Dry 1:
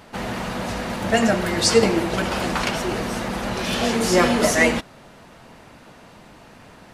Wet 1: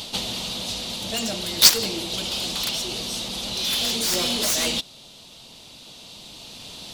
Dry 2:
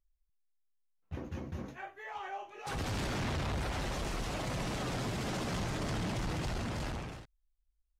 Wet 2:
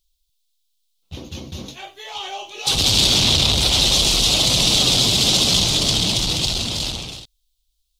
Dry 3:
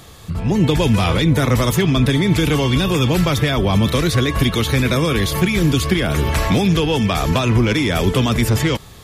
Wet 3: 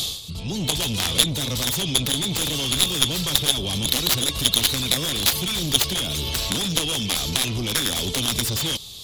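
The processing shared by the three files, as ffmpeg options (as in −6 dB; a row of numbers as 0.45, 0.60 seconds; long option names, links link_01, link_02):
-af "acontrast=77,highshelf=frequency=2500:width_type=q:width=3:gain=13,aeval=exprs='5.62*(cos(1*acos(clip(val(0)/5.62,-1,1)))-cos(1*PI/2))+1.58*(cos(7*acos(clip(val(0)/5.62,-1,1)))-cos(7*PI/2))':channel_layout=same,dynaudnorm=framelen=210:gausssize=21:maxgain=11.5dB,volume=-1dB"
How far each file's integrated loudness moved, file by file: −1.0, +22.5, −4.5 LU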